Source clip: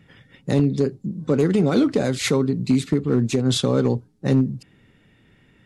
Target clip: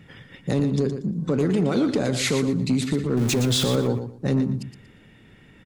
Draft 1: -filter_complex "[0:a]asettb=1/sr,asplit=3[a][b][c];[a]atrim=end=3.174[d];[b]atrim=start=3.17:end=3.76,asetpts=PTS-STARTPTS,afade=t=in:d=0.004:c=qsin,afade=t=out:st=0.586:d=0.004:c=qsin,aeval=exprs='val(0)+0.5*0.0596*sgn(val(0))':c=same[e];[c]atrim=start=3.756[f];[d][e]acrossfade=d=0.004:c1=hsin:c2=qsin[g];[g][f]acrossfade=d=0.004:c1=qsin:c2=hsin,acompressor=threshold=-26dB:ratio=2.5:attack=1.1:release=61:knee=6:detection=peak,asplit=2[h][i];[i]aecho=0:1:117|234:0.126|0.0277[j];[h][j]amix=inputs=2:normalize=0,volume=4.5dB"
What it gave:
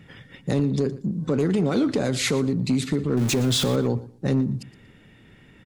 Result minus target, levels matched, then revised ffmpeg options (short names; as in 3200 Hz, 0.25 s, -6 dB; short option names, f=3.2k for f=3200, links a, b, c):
echo-to-direct -9 dB
-filter_complex "[0:a]asettb=1/sr,asplit=3[a][b][c];[a]atrim=end=3.174[d];[b]atrim=start=3.17:end=3.76,asetpts=PTS-STARTPTS,afade=t=in:d=0.004:c=qsin,afade=t=out:st=0.586:d=0.004:c=qsin,aeval=exprs='val(0)+0.5*0.0596*sgn(val(0))':c=same[e];[c]atrim=start=3.756[f];[d][e]acrossfade=d=0.004:c1=hsin:c2=qsin[g];[g][f]acrossfade=d=0.004:c1=qsin:c2=hsin,acompressor=threshold=-26dB:ratio=2.5:attack=1.1:release=61:knee=6:detection=peak,asplit=2[h][i];[i]aecho=0:1:117|234|351:0.355|0.0781|0.0172[j];[h][j]amix=inputs=2:normalize=0,volume=4.5dB"